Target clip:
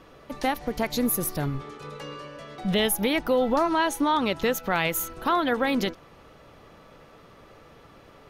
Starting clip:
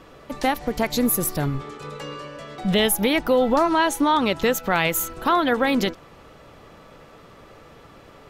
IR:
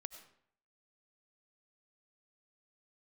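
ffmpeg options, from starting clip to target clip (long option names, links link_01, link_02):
-af "bandreject=frequency=7600:width=8.8,volume=-4dB"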